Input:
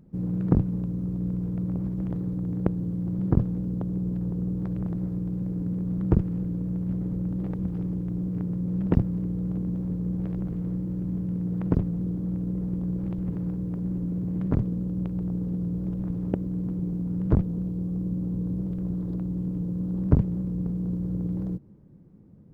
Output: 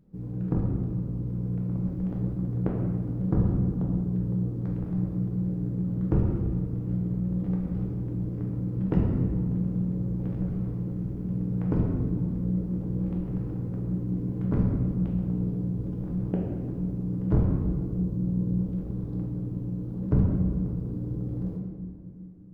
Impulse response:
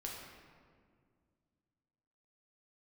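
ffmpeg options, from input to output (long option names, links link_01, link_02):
-filter_complex "[0:a]dynaudnorm=framelen=530:gausssize=5:maxgain=4dB[link_01];[1:a]atrim=start_sample=2205[link_02];[link_01][link_02]afir=irnorm=-1:irlink=0,volume=-3dB"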